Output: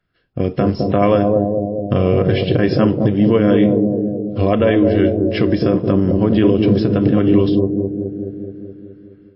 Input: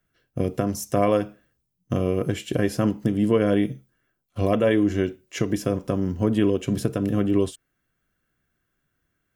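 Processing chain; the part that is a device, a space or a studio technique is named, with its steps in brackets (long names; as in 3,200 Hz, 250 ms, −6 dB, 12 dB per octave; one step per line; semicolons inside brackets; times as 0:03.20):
0:01.23–0:02.51: dynamic equaliser 290 Hz, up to −5 dB, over −36 dBFS, Q 2.1
0:04.99–0:05.50: high-pass filter 66 Hz 12 dB per octave
bucket-brigade delay 211 ms, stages 1,024, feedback 63%, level −4 dB
low-bitrate web radio (automatic gain control gain up to 8 dB; brickwall limiter −6.5 dBFS, peak gain reduction 5 dB; level +3.5 dB; MP3 24 kbit/s 12,000 Hz)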